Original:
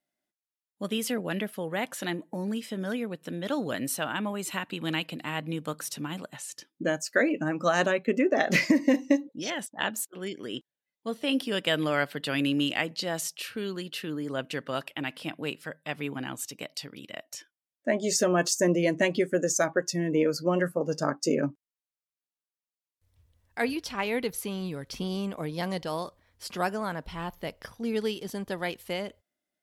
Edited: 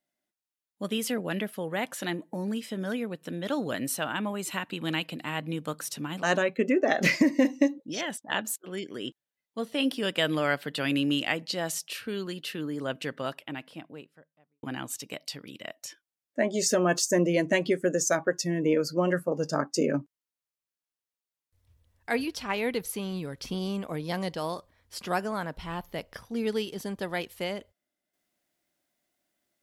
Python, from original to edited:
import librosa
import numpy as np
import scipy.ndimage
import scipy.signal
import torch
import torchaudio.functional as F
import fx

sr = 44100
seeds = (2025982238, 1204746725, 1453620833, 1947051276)

y = fx.studio_fade_out(x, sr, start_s=14.41, length_s=1.71)
y = fx.edit(y, sr, fx.cut(start_s=6.23, length_s=1.49), tone=tone)